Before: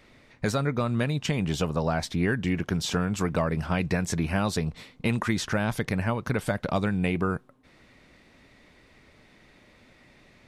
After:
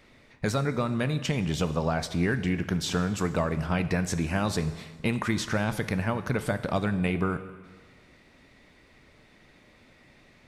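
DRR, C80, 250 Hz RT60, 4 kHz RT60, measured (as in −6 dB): 11.0 dB, 14.0 dB, 1.5 s, 1.4 s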